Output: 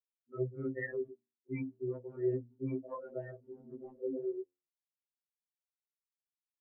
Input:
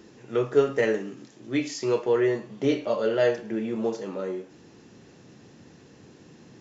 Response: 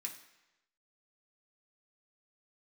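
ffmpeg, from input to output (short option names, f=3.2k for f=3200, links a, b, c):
-filter_complex "[0:a]bass=f=250:g=1,treble=f=4k:g=-14,asplit=2[a][b];[1:a]atrim=start_sample=2205,afade=t=out:st=0.19:d=0.01,atrim=end_sample=8820[c];[b][c]afir=irnorm=-1:irlink=0,volume=-16dB[d];[a][d]amix=inputs=2:normalize=0,afftfilt=real='re*gte(hypot(re,im),0.112)':imag='im*gte(hypot(re,im),0.112)':win_size=1024:overlap=0.75,areverse,acompressor=threshold=-29dB:ratio=10,areverse,bandreject=f=60:t=h:w=6,bandreject=f=120:t=h:w=6,bandreject=f=180:t=h:w=6,bandreject=f=240:t=h:w=6,bandreject=f=300:t=h:w=6,bandreject=f=360:t=h:w=6,bandreject=f=420:t=h:w=6,bandreject=f=480:t=h:w=6,afftfilt=real='re*2.45*eq(mod(b,6),0)':imag='im*2.45*eq(mod(b,6),0)':win_size=2048:overlap=0.75,volume=2dB"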